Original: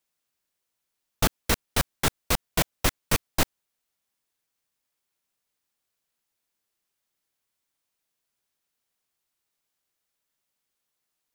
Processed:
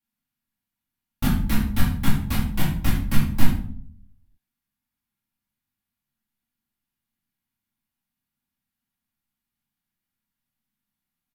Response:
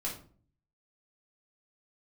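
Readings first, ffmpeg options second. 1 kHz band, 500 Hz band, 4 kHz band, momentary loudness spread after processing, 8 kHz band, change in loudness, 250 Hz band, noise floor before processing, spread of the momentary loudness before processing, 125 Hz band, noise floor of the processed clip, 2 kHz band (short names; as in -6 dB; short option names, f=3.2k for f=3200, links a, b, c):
-3.5 dB, -9.0 dB, -5.5 dB, 5 LU, -8.0 dB, +1.5 dB, +9.0 dB, -82 dBFS, 3 LU, +8.5 dB, under -85 dBFS, -2.5 dB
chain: -filter_complex "[0:a]firequalizer=gain_entry='entry(140,0);entry(230,5);entry(430,-19);entry(810,-9);entry(2000,-7);entry(6700,-14);entry(13000,-5)':delay=0.05:min_phase=1[a];[1:a]atrim=start_sample=2205,asetrate=31752,aresample=44100[b];[a][b]afir=irnorm=-1:irlink=0"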